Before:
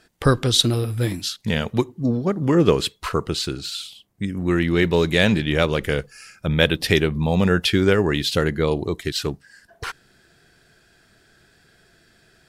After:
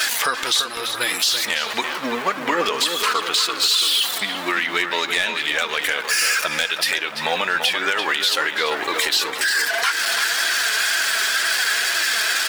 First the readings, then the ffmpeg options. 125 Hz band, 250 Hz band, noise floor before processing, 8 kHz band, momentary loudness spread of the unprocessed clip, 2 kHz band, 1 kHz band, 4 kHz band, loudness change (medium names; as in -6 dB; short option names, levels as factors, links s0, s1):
-25.5 dB, -12.5 dB, -58 dBFS, +11.0 dB, 13 LU, +9.0 dB, +7.0 dB, +7.5 dB, +2.0 dB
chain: -filter_complex "[0:a]aeval=exprs='val(0)+0.5*0.0531*sgn(val(0))':c=same,afftdn=nr=14:nf=-42,highpass=1200,acompressor=threshold=0.0251:ratio=4,aeval=exprs='0.0841*(abs(mod(val(0)/0.0841+3,4)-2)-1)':c=same,flanger=delay=3:depth=1.8:regen=49:speed=2:shape=triangular,asplit=2[s0][s1];[s1]adelay=338,lowpass=f=3300:p=1,volume=0.422,asplit=2[s2][s3];[s3]adelay=338,lowpass=f=3300:p=1,volume=0.42,asplit=2[s4][s5];[s5]adelay=338,lowpass=f=3300:p=1,volume=0.42,asplit=2[s6][s7];[s7]adelay=338,lowpass=f=3300:p=1,volume=0.42,asplit=2[s8][s9];[s9]adelay=338,lowpass=f=3300:p=1,volume=0.42[s10];[s0][s2][s4][s6][s8][s10]amix=inputs=6:normalize=0,alimiter=level_in=23.7:limit=0.891:release=50:level=0:latency=1,volume=0.398"